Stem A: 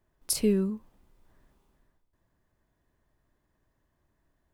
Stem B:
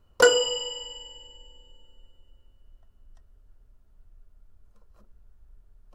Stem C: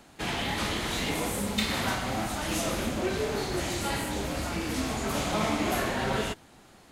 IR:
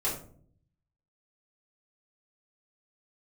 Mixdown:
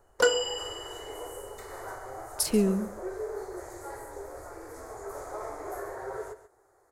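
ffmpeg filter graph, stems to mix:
-filter_complex "[0:a]agate=range=-33dB:threshold=-56dB:ratio=3:detection=peak,adelay=2100,volume=0.5dB,asplit=2[link_01][link_02];[link_02]volume=-17.5dB[link_03];[1:a]volume=-5.5dB[link_04];[2:a]firequalizer=gain_entry='entry(120,0);entry(170,-28);entry(390,14);entry(590,9);entry(1300,7);entry(1900,2);entry(2800,-23);entry(4500,-7);entry(6800,3);entry(11000,5)':delay=0.05:min_phase=1,volume=-16.5dB,asplit=2[link_05][link_06];[link_06]volume=-13dB[link_07];[link_03][link_07]amix=inputs=2:normalize=0,aecho=0:1:136:1[link_08];[link_01][link_04][link_05][link_08]amix=inputs=4:normalize=0"

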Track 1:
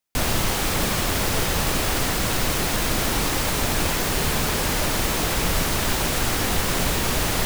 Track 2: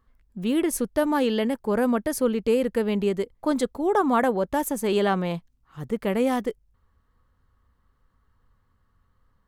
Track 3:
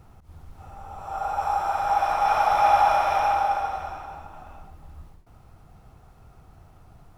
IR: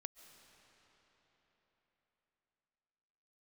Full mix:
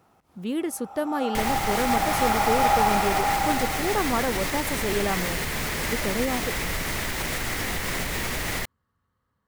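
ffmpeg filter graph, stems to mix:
-filter_complex "[0:a]alimiter=limit=-19dB:level=0:latency=1:release=301,equalizer=frequency=2000:width_type=o:width=0.44:gain=9,adelay=1200,volume=0dB[link_01];[1:a]highpass=93,volume=-4.5dB[link_02];[2:a]highpass=240,volume=-3dB[link_03];[link_01][link_02][link_03]amix=inputs=3:normalize=0"

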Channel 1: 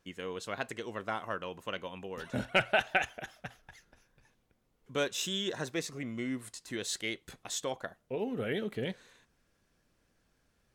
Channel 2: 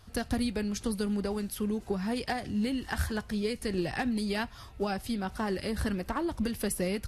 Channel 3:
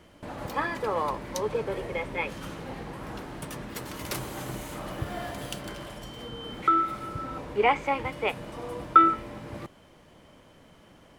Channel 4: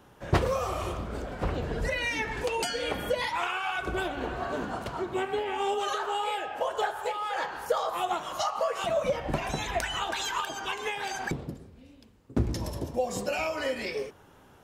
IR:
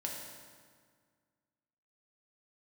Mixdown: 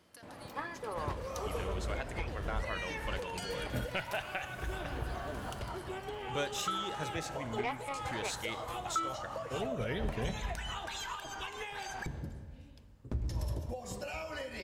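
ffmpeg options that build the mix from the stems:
-filter_complex "[0:a]adelay=1400,volume=-4.5dB,asplit=2[link_01][link_02];[link_02]volume=-9dB[link_03];[1:a]highpass=790,acompressor=threshold=-42dB:ratio=6,volume=-10.5dB[link_04];[2:a]highpass=75,aeval=exprs='0.562*(cos(1*acos(clip(val(0)/0.562,-1,1)))-cos(1*PI/2))+0.0355*(cos(7*acos(clip(val(0)/0.562,-1,1)))-cos(7*PI/2))':channel_layout=same,volume=-6.5dB[link_05];[3:a]acompressor=threshold=-33dB:ratio=6,adelay=750,volume=-6dB,asplit=2[link_06][link_07];[link_07]volume=-10.5dB[link_08];[4:a]atrim=start_sample=2205[link_09];[link_03][link_08]amix=inputs=2:normalize=0[link_10];[link_10][link_09]afir=irnorm=-1:irlink=0[link_11];[link_01][link_04][link_05][link_06][link_11]amix=inputs=5:normalize=0,asubboost=boost=4:cutoff=110,alimiter=limit=-23.5dB:level=0:latency=1:release=404"

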